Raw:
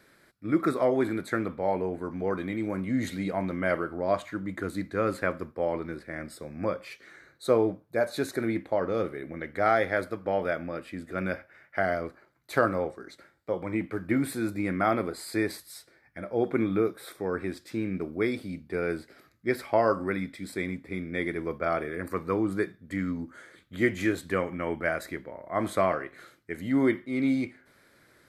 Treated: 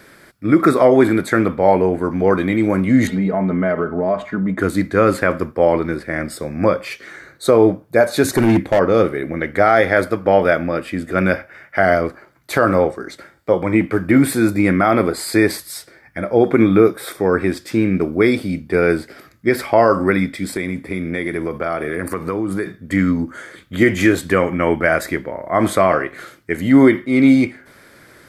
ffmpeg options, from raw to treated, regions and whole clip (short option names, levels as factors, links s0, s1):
-filter_complex "[0:a]asettb=1/sr,asplit=3[s0][s1][s2];[s0]atrim=end=3.074[s3];[s1]atrim=start=3.07:end=4.59,asetpts=PTS-STARTPTS,afade=t=in:d=0.004:c=qsin,afade=t=out:st=1.516:d=0.004:c=qsin,lowpass=f=1000:p=1,aecho=1:1:4.7:0.66,atrim=end_sample=67032,acompressor=threshold=0.0355:ratio=4:attack=3.2:release=140:knee=1:detection=peak[s4];[s2]atrim=start=4.586[s5];[s3][s4]acrossfade=d=0.004:c1=hsin:c2=qsin[s6];[s6][s5]acrossfade=d=0.004:c1=qsin:c2=hsin,asettb=1/sr,asplit=3[s7][s8][s9];[s7]atrim=end=8.244[s10];[s8]atrim=start=8.24:end=8.79,asetpts=PTS-STARTPTS,afade=t=in:d=0.004:c=qsin,afade=t=out:st=0.546:d=0.004:c=qsin,bass=f=250:g=8,treble=f=4000:g=4,volume=15,asoftclip=hard,volume=0.0668[s11];[s9]atrim=start=8.786[s12];[s10][s11]acrossfade=d=0.004:c1=hsin:c2=qsin[s13];[s13][s12]acrossfade=d=0.004:c1=qsin:c2=hsin,asettb=1/sr,asplit=3[s14][s15][s16];[s14]atrim=end=20.564[s17];[s15]atrim=start=20.56:end=22.66,asetpts=PTS-STARTPTS,afade=t=in:d=0.004:c=qsin,afade=t=out:st=2.096:d=0.004:c=qsin,highpass=56,equalizer=f=10000:w=3.8:g=8,acompressor=threshold=0.0251:ratio=5:attack=3.2:release=140:knee=1:detection=peak[s18];[s16]atrim=start=22.656[s19];[s17][s18]acrossfade=d=0.004:c1=hsin:c2=qsin[s20];[s20][s19]acrossfade=d=0.004:c1=qsin:c2=hsin,bandreject=f=4000:w=15,alimiter=level_in=5.96:limit=0.891:release=50:level=0:latency=1,volume=0.891"